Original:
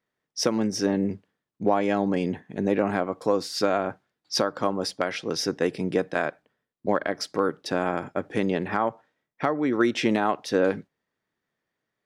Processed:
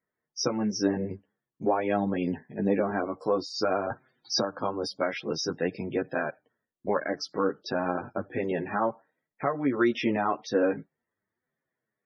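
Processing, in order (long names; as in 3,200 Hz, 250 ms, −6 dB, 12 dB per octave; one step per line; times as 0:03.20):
spectral peaks only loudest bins 64
multi-voice chorus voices 2, 0.49 Hz, delay 11 ms, depth 3.5 ms
0:03.90–0:04.59: multiband upward and downward compressor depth 70%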